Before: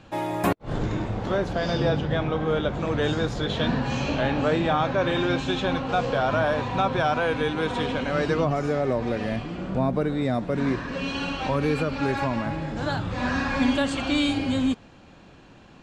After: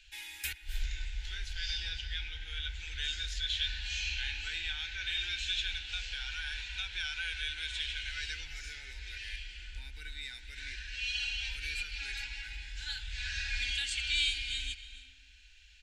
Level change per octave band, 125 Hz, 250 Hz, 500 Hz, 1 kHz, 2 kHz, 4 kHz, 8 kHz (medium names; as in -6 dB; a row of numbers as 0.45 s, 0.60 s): -19.0 dB, under -40 dB, under -40 dB, -31.0 dB, -6.0 dB, 0.0 dB, 0.0 dB